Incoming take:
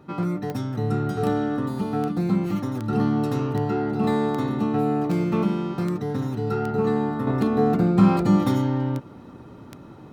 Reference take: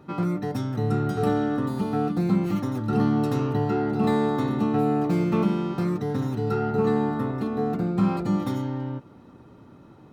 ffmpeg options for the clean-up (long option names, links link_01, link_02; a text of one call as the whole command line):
ffmpeg -i in.wav -af "adeclick=threshold=4,asetnsamples=nb_out_samples=441:pad=0,asendcmd='7.27 volume volume -6dB',volume=0dB" out.wav